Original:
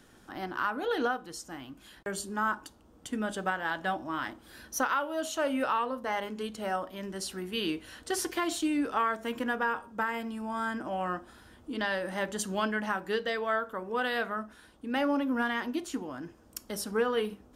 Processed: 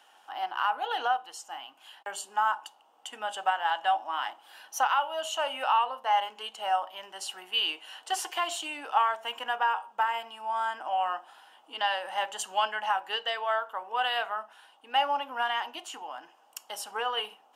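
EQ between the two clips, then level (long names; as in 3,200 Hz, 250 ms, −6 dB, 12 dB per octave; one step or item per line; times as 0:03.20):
parametric band 2,900 Hz +15 dB 0.26 octaves
dynamic equaliser 7,400 Hz, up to +5 dB, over −54 dBFS, Q 2.9
high-pass with resonance 810 Hz, resonance Q 4.9
−3.5 dB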